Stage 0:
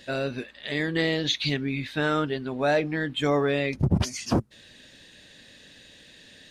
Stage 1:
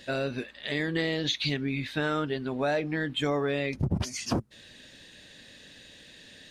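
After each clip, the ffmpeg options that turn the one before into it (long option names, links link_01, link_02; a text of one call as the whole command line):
ffmpeg -i in.wav -af "acompressor=threshold=-26dB:ratio=2.5" out.wav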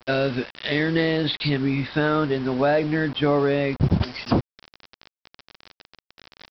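ffmpeg -i in.wav -af "aresample=11025,acrusher=bits=6:mix=0:aa=0.000001,aresample=44100,adynamicequalizer=threshold=0.00501:dfrequency=1800:dqfactor=0.7:tfrequency=1800:tqfactor=0.7:attack=5:release=100:ratio=0.375:range=4:mode=cutabove:tftype=highshelf,volume=8dB" out.wav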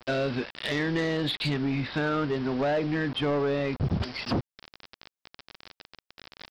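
ffmpeg -i in.wav -filter_complex "[0:a]asplit=2[link_01][link_02];[link_02]acompressor=threshold=-30dB:ratio=6,volume=0dB[link_03];[link_01][link_03]amix=inputs=2:normalize=0,asoftclip=type=tanh:threshold=-16dB,volume=-5dB" out.wav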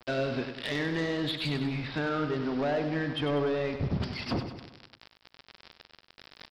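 ffmpeg -i in.wav -af "aecho=1:1:97|194|291|388|485|582:0.376|0.199|0.106|0.056|0.0297|0.0157,volume=-3.5dB" out.wav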